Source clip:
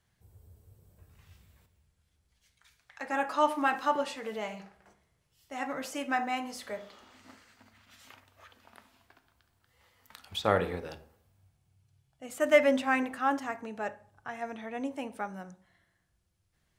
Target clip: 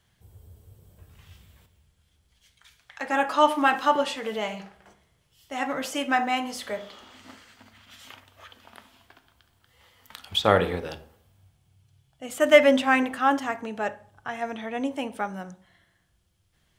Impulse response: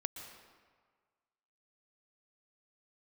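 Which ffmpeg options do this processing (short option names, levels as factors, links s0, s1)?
-af "equalizer=f=3200:t=o:w=0.29:g=6.5,volume=2.11"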